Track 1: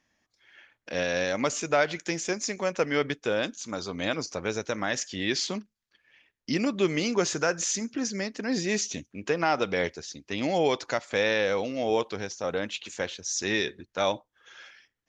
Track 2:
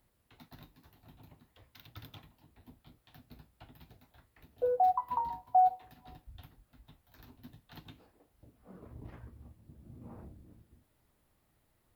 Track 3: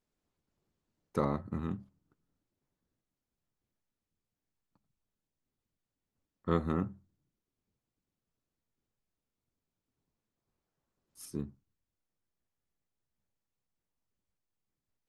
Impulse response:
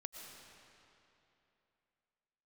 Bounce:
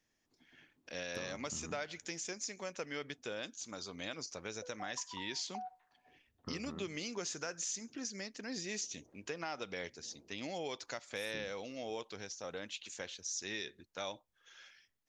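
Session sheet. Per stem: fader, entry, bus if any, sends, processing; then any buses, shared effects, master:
-13.0 dB, 0.00 s, no send, high shelf 2800 Hz +9.5 dB
-7.5 dB, 0.00 s, no send, auto-wah 300–1600 Hz, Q 2.1, up, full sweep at -31.5 dBFS
-2.0 dB, 0.00 s, no send, compressor 6:1, threshold -40 dBFS, peak gain reduction 15.5 dB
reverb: off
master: compressor 2:1, threshold -40 dBFS, peak gain reduction 6 dB

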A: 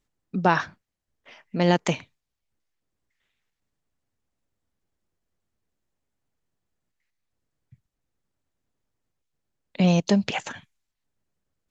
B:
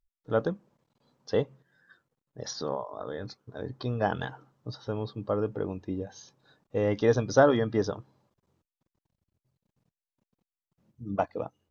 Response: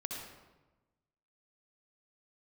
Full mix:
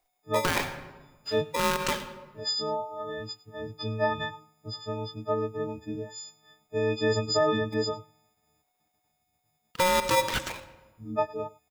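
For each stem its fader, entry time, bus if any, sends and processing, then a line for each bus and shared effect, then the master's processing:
-2.5 dB, 0.00 s, send -9.5 dB, no echo send, polarity switched at an audio rate 730 Hz
-2.0 dB, 0.00 s, no send, echo send -22 dB, frequency quantiser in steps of 6 st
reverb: on, RT60 1.1 s, pre-delay 58 ms
echo: echo 0.102 s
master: limiter -15 dBFS, peak gain reduction 10 dB

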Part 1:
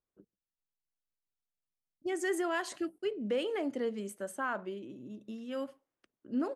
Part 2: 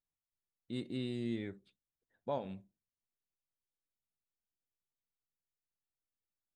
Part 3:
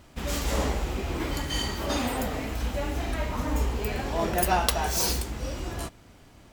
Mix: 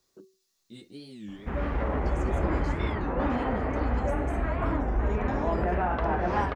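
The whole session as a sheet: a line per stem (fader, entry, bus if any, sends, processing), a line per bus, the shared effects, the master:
-1.0 dB, 0.00 s, no bus, no send, echo send -17.5 dB, band shelf 5200 Hz +9.5 dB 1.1 oct; resonator 380 Hz, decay 0.29 s, harmonics odd, mix 80%; three-band squash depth 100%
-3.0 dB, 0.00 s, bus A, no send, no echo send, ensemble effect
+1.5 dB, 1.30 s, bus A, no send, echo send -5.5 dB, LPF 1800 Hz 24 dB/oct
bus A: 0.0 dB, high shelf 5000 Hz +11 dB; limiter -19.5 dBFS, peak gain reduction 8.5 dB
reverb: off
echo: echo 0.557 s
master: record warp 33 1/3 rpm, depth 250 cents

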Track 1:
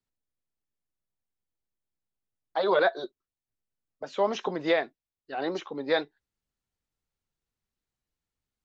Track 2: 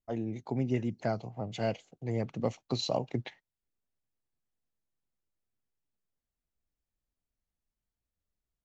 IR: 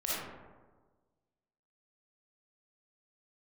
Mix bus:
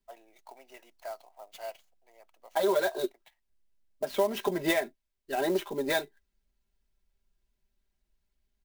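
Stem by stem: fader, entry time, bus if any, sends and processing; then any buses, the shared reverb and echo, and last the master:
+1.5 dB, 0.00 s, no send, bell 1200 Hz -9.5 dB 0.29 oct; comb 5 ms, depth 79%; compressor 6:1, threshold -26 dBFS, peak gain reduction 10.5 dB
1.69 s -2 dB -> 1.98 s -11 dB, 0.00 s, no send, HPF 720 Hz 24 dB/oct; bell 1900 Hz -6 dB 1.7 oct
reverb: off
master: low shelf 98 Hz +10.5 dB; comb 3.1 ms, depth 37%; clock jitter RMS 0.027 ms

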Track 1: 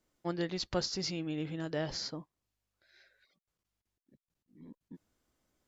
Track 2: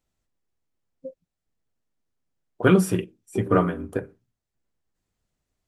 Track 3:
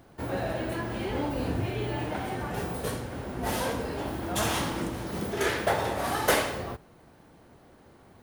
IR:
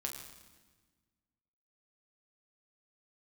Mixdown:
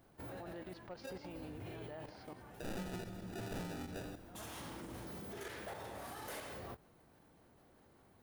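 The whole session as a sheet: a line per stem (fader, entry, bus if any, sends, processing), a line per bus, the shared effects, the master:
-10.5 dB, 0.15 s, no send, echo send -17 dB, LPF 3200 Hz 12 dB/oct; bell 830 Hz +11.5 dB 2.2 oct
-2.0 dB, 0.00 s, send -6.5 dB, no echo send, one-sided fold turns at -19.5 dBFS; sample-and-hold 41×
-7.5 dB, 0.00 s, no send, no echo send, high shelf 10000 Hz +7 dB; auto duck -12 dB, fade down 0.90 s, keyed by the second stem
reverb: on, RT60 1.3 s, pre-delay 7 ms
echo: echo 0.173 s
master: level quantiser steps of 11 dB; soft clip -28.5 dBFS, distortion -5 dB; limiter -39 dBFS, peak gain reduction 10.5 dB

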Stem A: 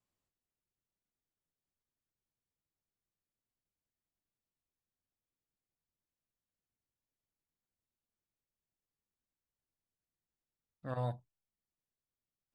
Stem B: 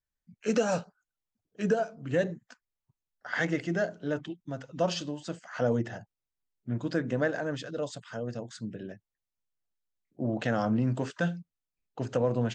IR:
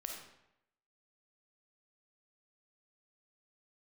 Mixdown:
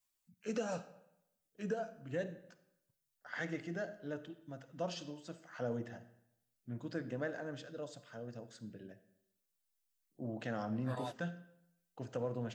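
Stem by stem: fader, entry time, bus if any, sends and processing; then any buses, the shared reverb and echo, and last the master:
+2.0 dB, 0.00 s, no send, reverb removal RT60 0.53 s; tilt +3.5 dB/oct; ensemble effect
-14.0 dB, 0.00 s, send -5 dB, dry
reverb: on, RT60 0.80 s, pre-delay 10 ms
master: dry

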